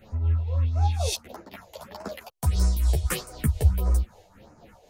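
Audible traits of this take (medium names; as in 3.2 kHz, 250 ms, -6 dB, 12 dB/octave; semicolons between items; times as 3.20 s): phasing stages 4, 1.6 Hz, lowest notch 210–3300 Hz; tremolo triangle 3.9 Hz, depth 60%; a shimmering, thickened sound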